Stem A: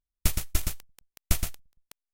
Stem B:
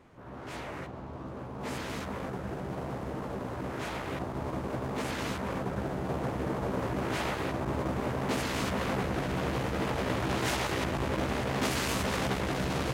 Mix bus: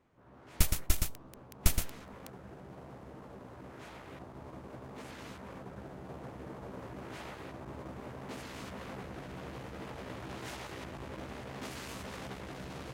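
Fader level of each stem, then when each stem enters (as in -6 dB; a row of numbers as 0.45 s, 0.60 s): -2.0 dB, -13.0 dB; 0.35 s, 0.00 s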